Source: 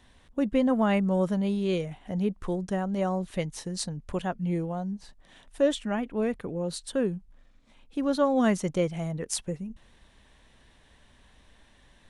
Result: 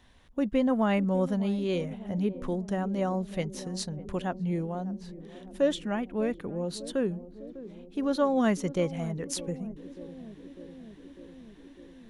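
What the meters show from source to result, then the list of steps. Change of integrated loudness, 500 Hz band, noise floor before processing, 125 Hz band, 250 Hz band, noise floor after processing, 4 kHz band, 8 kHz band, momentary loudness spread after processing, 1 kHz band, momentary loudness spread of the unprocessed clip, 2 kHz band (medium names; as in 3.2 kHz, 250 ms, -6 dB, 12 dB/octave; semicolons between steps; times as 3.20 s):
-1.5 dB, -1.5 dB, -60 dBFS, -1.5 dB, -1.0 dB, -51 dBFS, -1.5 dB, -3.5 dB, 20 LU, -1.5 dB, 10 LU, -1.5 dB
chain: peaking EQ 8.4 kHz -7 dB 0.21 oct; band-passed feedback delay 600 ms, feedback 81%, band-pass 310 Hz, level -14 dB; trim -1.5 dB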